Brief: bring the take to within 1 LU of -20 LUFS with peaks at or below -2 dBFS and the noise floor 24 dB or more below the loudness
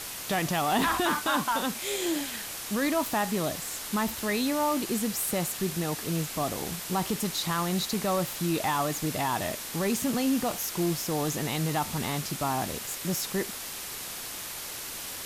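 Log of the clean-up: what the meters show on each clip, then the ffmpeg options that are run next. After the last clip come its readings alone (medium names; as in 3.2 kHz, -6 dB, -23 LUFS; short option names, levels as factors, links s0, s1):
noise floor -38 dBFS; noise floor target -53 dBFS; loudness -29.0 LUFS; peak level -14.5 dBFS; loudness target -20.0 LUFS
-> -af "afftdn=nr=15:nf=-38"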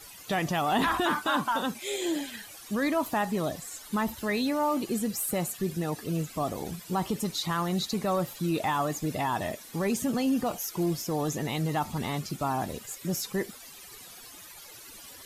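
noise floor -48 dBFS; noise floor target -54 dBFS
-> -af "afftdn=nr=6:nf=-48"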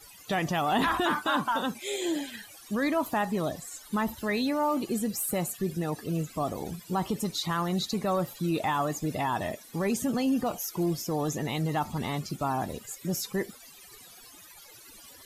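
noise floor -51 dBFS; noise floor target -54 dBFS
-> -af "afftdn=nr=6:nf=-51"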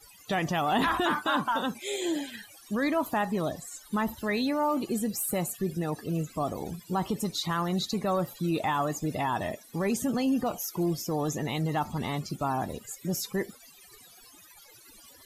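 noise floor -54 dBFS; loudness -30.0 LUFS; peak level -15.0 dBFS; loudness target -20.0 LUFS
-> -af "volume=3.16"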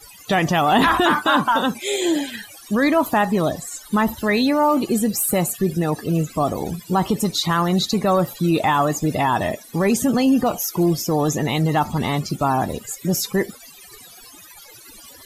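loudness -20.0 LUFS; peak level -5.0 dBFS; noise floor -44 dBFS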